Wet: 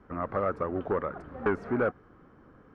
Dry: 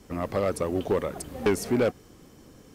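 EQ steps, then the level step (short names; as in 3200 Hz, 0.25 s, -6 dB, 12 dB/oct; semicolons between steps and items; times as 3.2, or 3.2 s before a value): synth low-pass 1400 Hz, resonance Q 3.2; -5.0 dB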